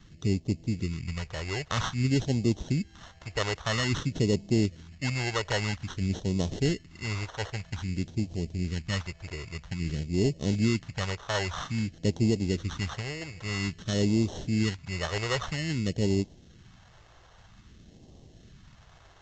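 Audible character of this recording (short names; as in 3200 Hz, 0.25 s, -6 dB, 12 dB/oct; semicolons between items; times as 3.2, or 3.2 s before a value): aliases and images of a low sample rate 2400 Hz, jitter 0%; phasing stages 2, 0.51 Hz, lowest notch 220–1400 Hz; Vorbis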